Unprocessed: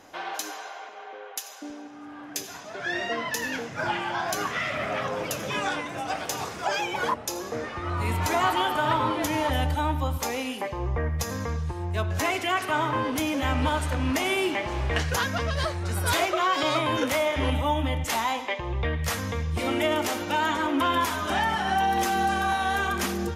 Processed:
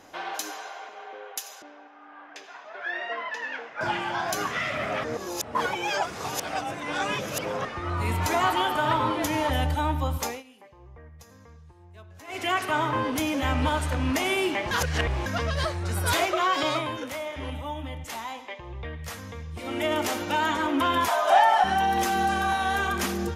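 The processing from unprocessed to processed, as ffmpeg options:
ffmpeg -i in.wav -filter_complex "[0:a]asettb=1/sr,asplit=3[link_01][link_02][link_03];[link_01]atrim=end=1.624[link_04];[link_02]atrim=start=1.62:end=3.81,asetpts=PTS-STARTPTS,afade=type=in:duration=0.004:curve=qsin,afade=type=out:start_time=2.186:duration=0.004:curve=qsin,highpass=650,lowpass=2400[link_05];[link_03]atrim=start=3.806[link_06];[link_04][link_05]acrossfade=duration=0.004:curve1=hsin:curve2=qsin[link_07];[link_07][link_06]acrossfade=duration=0.004:curve1=qsin:curve2=hsin,asettb=1/sr,asplit=3[link_08][link_09][link_10];[link_08]atrim=end=21.084[link_11];[link_09]atrim=start=21.08:end=21.64,asetpts=PTS-STARTPTS,afade=type=in:duration=0.004:curve=qsin,afade=type=out:start_time=0.556:duration=0.004:curve=qsin,highpass=frequency=680:width_type=q:width=5.6[link_12];[link_10]atrim=start=21.636[link_13];[link_11][link_12]acrossfade=duration=0.004:curve1=hsin:curve2=qsin[link_14];[link_14][link_13]acrossfade=duration=0.004:curve1=qsin:curve2=hsin,asplit=9[link_15][link_16][link_17][link_18][link_19][link_20][link_21][link_22][link_23];[link_15]atrim=end=5.042[link_24];[link_16]atrim=start=5.038:end=7.652,asetpts=PTS-STARTPTS,areverse[link_25];[link_17]atrim=start=7.648:end=10.43,asetpts=PTS-STARTPTS,afade=type=out:start_time=2.592:duration=0.19:silence=0.0944061[link_26];[link_18]atrim=start=10.43:end=12.27,asetpts=PTS-STARTPTS,volume=-20.5dB[link_27];[link_19]atrim=start=12.27:end=14.712,asetpts=PTS-STARTPTS,afade=type=in:duration=0.19:silence=0.0944061[link_28];[link_20]atrim=start=14.708:end=15.262,asetpts=PTS-STARTPTS,areverse[link_29];[link_21]atrim=start=15.258:end=16.97,asetpts=PTS-STARTPTS,afade=type=out:start_time=1.232:duration=0.48:curve=qsin:silence=0.354813[link_30];[link_22]atrim=start=16.97:end=19.63,asetpts=PTS-STARTPTS,volume=-9dB[link_31];[link_23]atrim=start=19.63,asetpts=PTS-STARTPTS,afade=type=in:duration=0.48:curve=qsin:silence=0.354813[link_32];[link_24][link_25]acrossfade=duration=0.004:curve1=hsin:curve2=hsin[link_33];[link_26][link_27][link_28]concat=n=3:v=0:a=1[link_34];[link_33][link_34]acrossfade=duration=0.004:curve1=hsin:curve2=hsin[link_35];[link_35][link_29]acrossfade=duration=0.004:curve1=hsin:curve2=hsin[link_36];[link_30][link_31][link_32]concat=n=3:v=0:a=1[link_37];[link_36][link_37]acrossfade=duration=0.004:curve1=hsin:curve2=hsin" out.wav

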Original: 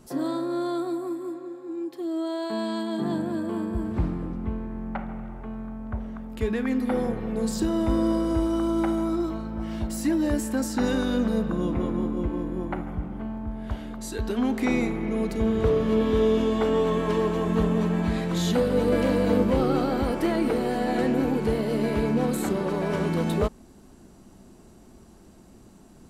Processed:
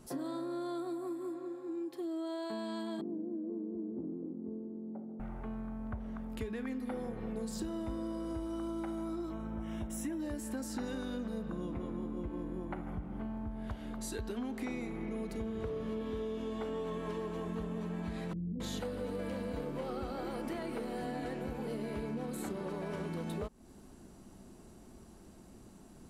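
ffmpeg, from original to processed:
ffmpeg -i in.wav -filter_complex "[0:a]asettb=1/sr,asplit=3[link_01][link_02][link_03];[link_01]atrim=end=3.014[link_04];[link_02]atrim=start=3.01:end=5.2,asetpts=PTS-STARTPTS,afade=type=in:duration=0.004:curve=qsin,afade=type=out:start_time=2.186:duration=0.004:curve=qsin,asuperpass=centerf=330:order=4:qfactor=1.4[link_05];[link_03]atrim=start=5.196[link_06];[link_04][link_05]acrossfade=duration=0.004:curve1=hsin:curve2=qsin[link_07];[link_07][link_06]acrossfade=duration=0.004:curve1=qsin:curve2=hsin,asettb=1/sr,asplit=3[link_08][link_09][link_10];[link_08]atrim=end=9.324[link_11];[link_09]atrim=start=9.32:end=10.2,asetpts=PTS-STARTPTS,afade=type=in:duration=0.004:curve=qsin,afade=type=out:start_time=0.876:duration=0.004:curve=qsin,asuperstop=centerf=4500:order=4:qfactor=2.7[link_12];[link_10]atrim=start=10.196[link_13];[link_11][link_12]acrossfade=duration=0.004:curve1=hsin:curve2=qsin[link_14];[link_14][link_13]acrossfade=duration=0.004:curve1=qsin:curve2=hsin,asettb=1/sr,asplit=3[link_15][link_16][link_17];[link_15]atrim=end=18.334[link_18];[link_16]atrim=start=18.33:end=21.67,asetpts=PTS-STARTPTS,afade=type=in:duration=0.004:curve=qsin,afade=type=out:start_time=3.336:duration=0.004:curve=qsin,acrossover=split=300[link_19][link_20];[link_20]adelay=270[link_21];[link_19][link_21]amix=inputs=2:normalize=0,atrim=end_sample=147294[link_22];[link_17]atrim=start=21.666[link_23];[link_18][link_22]acrossfade=duration=0.004:curve1=hsin:curve2=qsin[link_24];[link_24][link_23]acrossfade=duration=0.004:curve1=qsin:curve2=hsin,equalizer=frequency=10000:width=4.9:gain=4,acompressor=threshold=-32dB:ratio=6,volume=-4dB" out.wav

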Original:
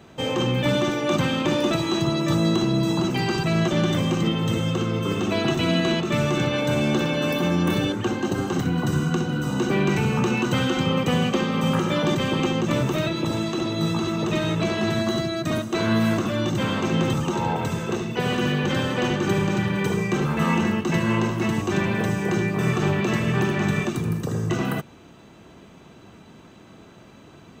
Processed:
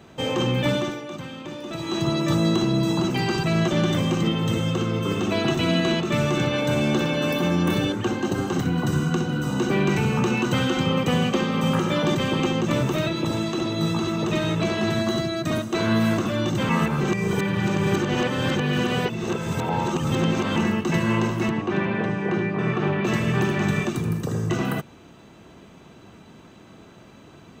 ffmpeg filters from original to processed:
ffmpeg -i in.wav -filter_complex "[0:a]asettb=1/sr,asplit=3[link_01][link_02][link_03];[link_01]atrim=end=21.494[link_04];[link_02]atrim=start=21.49:end=23.05,asetpts=PTS-STARTPTS,afade=type=in:duration=0.004:curve=qsin,afade=type=out:start_time=1.556:duration=0.004:curve=qsin,highpass=140,lowpass=2800[link_05];[link_03]atrim=start=23.046[link_06];[link_04][link_05]acrossfade=duration=0.004:curve1=hsin:curve2=qsin[link_07];[link_07][link_06]acrossfade=duration=0.004:curve1=qsin:curve2=hsin,asplit=5[link_08][link_09][link_10][link_11][link_12];[link_08]atrim=end=1.08,asetpts=PTS-STARTPTS,afade=type=out:start_time=0.65:duration=0.43:silence=0.223872[link_13];[link_09]atrim=start=1.08:end=1.67,asetpts=PTS-STARTPTS,volume=-13dB[link_14];[link_10]atrim=start=1.67:end=16.692,asetpts=PTS-STARTPTS,afade=type=in:duration=0.43:silence=0.223872[link_15];[link_11]atrim=start=16.688:end=20.562,asetpts=PTS-STARTPTS,areverse[link_16];[link_12]atrim=start=20.558[link_17];[link_13][link_14][link_15]concat=n=3:v=0:a=1[link_18];[link_18][link_16]acrossfade=duration=0.004:curve1=hsin:curve2=hsin[link_19];[link_19][link_17]acrossfade=duration=0.004:curve1=hsin:curve2=hsin" out.wav

